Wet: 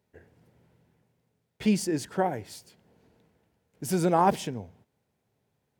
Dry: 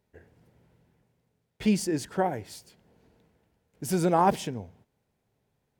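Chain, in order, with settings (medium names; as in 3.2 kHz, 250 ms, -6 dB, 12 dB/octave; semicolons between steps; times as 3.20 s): high-pass 67 Hz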